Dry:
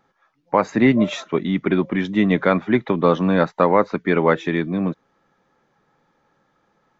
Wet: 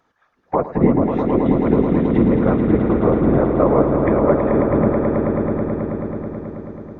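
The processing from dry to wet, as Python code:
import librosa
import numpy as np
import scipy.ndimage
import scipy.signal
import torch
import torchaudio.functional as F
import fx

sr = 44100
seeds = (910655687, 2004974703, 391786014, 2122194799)

p1 = fx.env_lowpass_down(x, sr, base_hz=820.0, full_db=-16.5)
p2 = fx.whisperise(p1, sr, seeds[0])
y = p2 + fx.echo_swell(p2, sr, ms=108, loudest=5, wet_db=-8, dry=0)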